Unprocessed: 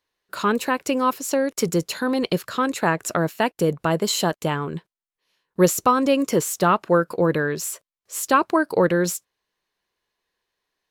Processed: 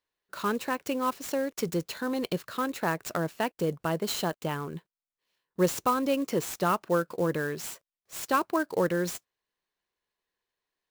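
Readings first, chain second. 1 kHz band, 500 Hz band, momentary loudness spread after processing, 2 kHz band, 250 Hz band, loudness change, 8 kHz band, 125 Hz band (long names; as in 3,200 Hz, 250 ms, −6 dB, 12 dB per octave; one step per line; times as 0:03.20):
−8.0 dB, −8.0 dB, 11 LU, −8.0 dB, −8.0 dB, −8.0 dB, −10.5 dB, −8.0 dB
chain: converter with an unsteady clock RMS 0.02 ms
level −8 dB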